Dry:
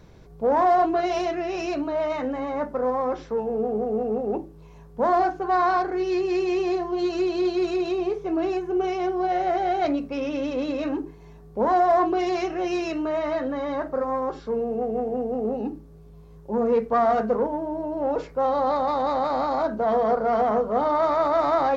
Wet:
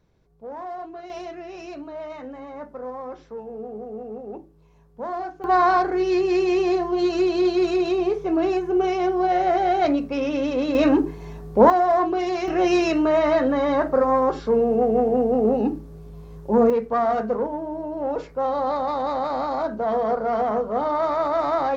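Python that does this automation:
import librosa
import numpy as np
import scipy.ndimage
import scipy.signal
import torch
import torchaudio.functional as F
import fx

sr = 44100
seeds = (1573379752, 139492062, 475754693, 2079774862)

y = fx.gain(x, sr, db=fx.steps((0.0, -15.0), (1.1, -9.0), (5.44, 3.5), (10.75, 10.0), (11.7, 0.0), (12.48, 7.0), (16.7, -1.0)))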